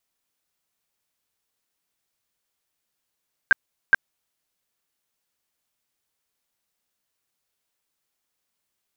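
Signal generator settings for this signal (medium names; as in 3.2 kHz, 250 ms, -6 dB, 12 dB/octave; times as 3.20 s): tone bursts 1.58 kHz, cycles 26, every 0.42 s, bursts 2, -9.5 dBFS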